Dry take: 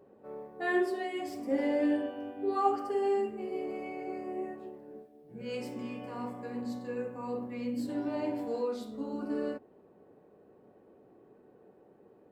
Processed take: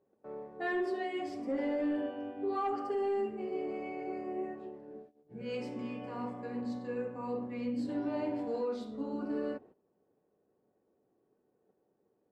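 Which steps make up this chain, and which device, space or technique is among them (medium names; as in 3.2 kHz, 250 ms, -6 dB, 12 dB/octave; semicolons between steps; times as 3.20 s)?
gate -54 dBFS, range -16 dB; soft clipper into limiter (saturation -20.5 dBFS, distortion -21 dB; peak limiter -26.5 dBFS, peak gain reduction 5.5 dB); distance through air 83 m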